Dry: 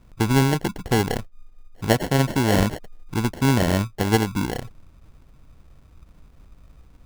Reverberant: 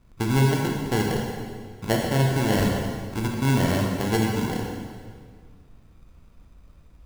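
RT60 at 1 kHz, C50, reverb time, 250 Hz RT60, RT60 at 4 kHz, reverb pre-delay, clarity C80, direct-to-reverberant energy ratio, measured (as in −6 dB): 1.8 s, 1.5 dB, 1.9 s, 2.1 s, 1.6 s, 21 ms, 3.0 dB, −0.5 dB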